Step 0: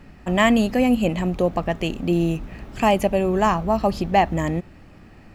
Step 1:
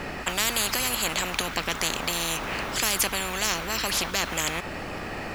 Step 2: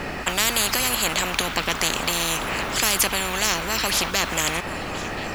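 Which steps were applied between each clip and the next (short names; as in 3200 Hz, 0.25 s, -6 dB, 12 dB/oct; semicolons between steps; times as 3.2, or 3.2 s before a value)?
spectral compressor 10:1; gain -1 dB
delay with a stepping band-pass 0.514 s, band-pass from 1100 Hz, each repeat 1.4 oct, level -9 dB; gain +4 dB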